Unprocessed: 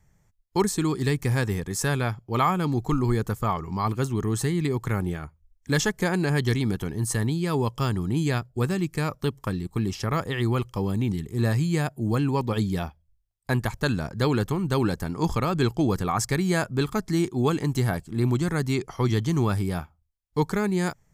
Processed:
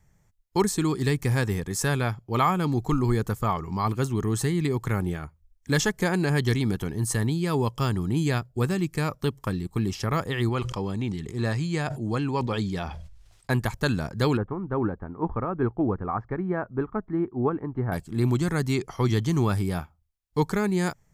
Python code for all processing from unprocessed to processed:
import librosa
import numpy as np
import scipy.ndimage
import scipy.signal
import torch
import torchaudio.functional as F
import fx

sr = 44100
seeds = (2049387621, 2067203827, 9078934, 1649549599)

y = fx.chain(x, sr, fx.lowpass(hz=7000.0, slope=12),
    fx.low_shelf(hz=350.0, db=-5.0),
    fx.sustainer(db_per_s=50.0), at=(10.49, 13.5))
y = fx.chain(y, sr, fx.lowpass(hz=1500.0, slope=24),
    fx.peak_eq(hz=150.0, db=-7.5, octaves=0.41),
    fx.upward_expand(threshold_db=-33.0, expansion=1.5), at=(14.37, 17.92))